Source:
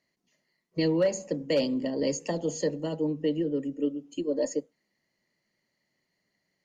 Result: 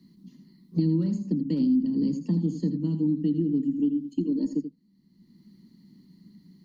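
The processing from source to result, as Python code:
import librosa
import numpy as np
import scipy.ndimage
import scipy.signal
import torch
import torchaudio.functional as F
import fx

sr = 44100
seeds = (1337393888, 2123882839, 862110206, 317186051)

y = fx.curve_eq(x, sr, hz=(130.0, 190.0, 320.0, 610.0, 960.0, 1700.0, 2500.0, 4000.0, 6700.0, 11000.0), db=(0, 15, 3, -30, -13, -22, -22, -7, -19, -9))
y = y + 10.0 ** (-10.5 / 20.0) * np.pad(y, (int(82 * sr / 1000.0), 0))[:len(y)]
y = fx.band_squash(y, sr, depth_pct=70)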